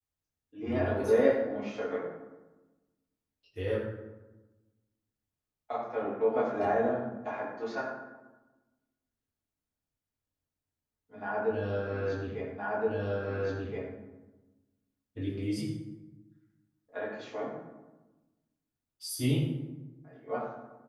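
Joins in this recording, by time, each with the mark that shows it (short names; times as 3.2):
12.58 repeat of the last 1.37 s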